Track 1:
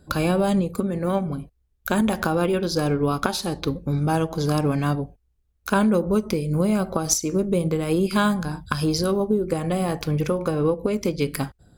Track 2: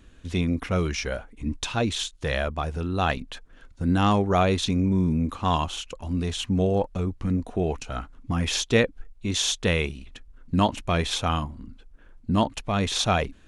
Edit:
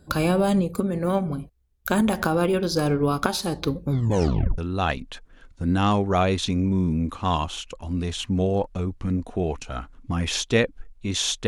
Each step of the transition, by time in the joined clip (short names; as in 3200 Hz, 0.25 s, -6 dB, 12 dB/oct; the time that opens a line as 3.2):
track 1
3.9 tape stop 0.68 s
4.58 switch to track 2 from 2.78 s